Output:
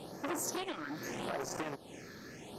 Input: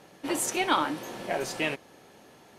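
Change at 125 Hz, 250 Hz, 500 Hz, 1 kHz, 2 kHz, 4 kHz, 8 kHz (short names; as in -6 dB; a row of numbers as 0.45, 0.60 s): -4.0, -7.5, -8.0, -11.5, -11.0, -11.5, -7.5 dB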